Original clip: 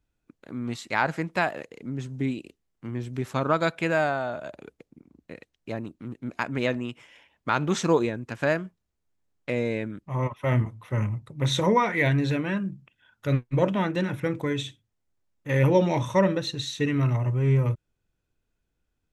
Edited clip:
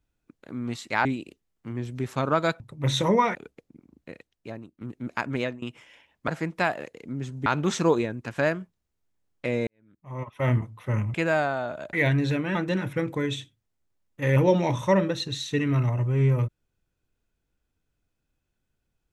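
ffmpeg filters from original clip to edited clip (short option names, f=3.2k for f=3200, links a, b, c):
-filter_complex "[0:a]asplit=12[a][b][c][d][e][f][g][h][i][j][k][l];[a]atrim=end=1.052[m];[b]atrim=start=2.228:end=3.782[n];[c]atrim=start=11.178:end=11.932[o];[d]atrim=start=4.568:end=6.03,asetpts=PTS-STARTPTS,afade=t=out:st=0.752:d=0.71:silence=0.237137[p];[e]atrim=start=6.03:end=6.84,asetpts=PTS-STARTPTS,afade=t=in:d=0.004:c=hsin:silence=0.237137,afade=t=out:st=0.54:d=0.27:silence=0.125893[q];[f]atrim=start=6.84:end=7.502,asetpts=PTS-STARTPTS,afade=t=in:d=0.004:c=hsin:silence=0.125893[r];[g]atrim=start=1.048:end=2.232[s];[h]atrim=start=7.498:end=9.71,asetpts=PTS-STARTPTS,afade=t=out:st=2.208:d=0.004:c=hsin[t];[i]atrim=start=9.71:end=11.182,asetpts=PTS-STARTPTS,afade=t=in:d=0.78:c=qua[u];[j]atrim=start=3.778:end=4.572[v];[k]atrim=start=11.928:end=12.552[w];[l]atrim=start=13.818[x];[m][n]acrossfade=d=0.004:c1=hsin:c2=hsin[y];[y][o]acrossfade=d=0.004:c1=hsin:c2=hsin[z];[p][q][r]concat=n=3:v=0:a=1[aa];[z][aa]acrossfade=d=0.004:c1=hsin:c2=hsin[ab];[ab][s]acrossfade=d=0.004:c1=hsin:c2=hsin[ac];[t][u]concat=n=2:v=0:a=1[ad];[ac][ad]acrossfade=d=0.004:c1=hsin:c2=hsin[ae];[ae][v]acrossfade=d=0.004:c1=hsin:c2=hsin[af];[af][w]acrossfade=d=0.004:c1=hsin:c2=hsin[ag];[ag][x]acrossfade=d=0.004:c1=hsin:c2=hsin"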